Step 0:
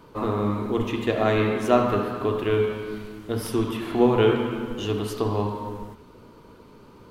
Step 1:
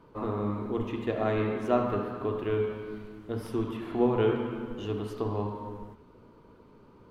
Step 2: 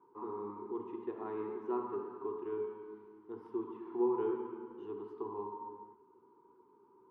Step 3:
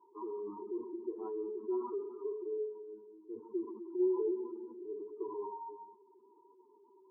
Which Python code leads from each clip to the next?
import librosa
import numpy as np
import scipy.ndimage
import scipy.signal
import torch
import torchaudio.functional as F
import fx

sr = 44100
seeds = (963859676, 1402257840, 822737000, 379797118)

y1 = fx.high_shelf(x, sr, hz=3100.0, db=-11.5)
y1 = F.gain(torch.from_numpy(y1), -6.0).numpy()
y2 = fx.double_bandpass(y1, sr, hz=600.0, octaves=1.3)
y2 = F.gain(torch.from_numpy(y2), -1.5).numpy()
y3 = fx.spec_expand(y2, sr, power=2.2)
y3 = F.gain(torch.from_numpy(y3), 1.0).numpy()